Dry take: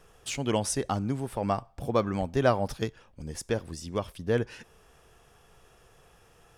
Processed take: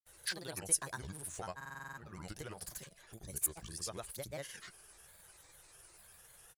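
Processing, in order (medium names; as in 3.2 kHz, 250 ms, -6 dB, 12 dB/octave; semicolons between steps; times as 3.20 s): compression 3:1, threshold -35 dBFS, peak gain reduction 13.5 dB; pre-emphasis filter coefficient 0.8; granulator, pitch spread up and down by 7 st; graphic EQ with 31 bands 250 Hz -12 dB, 1.6 kHz +6 dB, 10 kHz +11 dB; buffer glitch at 1.56 s, samples 2048, times 8; trim +6.5 dB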